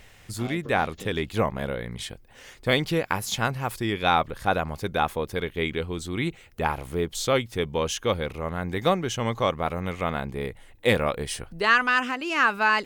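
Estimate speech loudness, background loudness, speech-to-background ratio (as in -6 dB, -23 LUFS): -26.0 LUFS, -43.0 LUFS, 17.0 dB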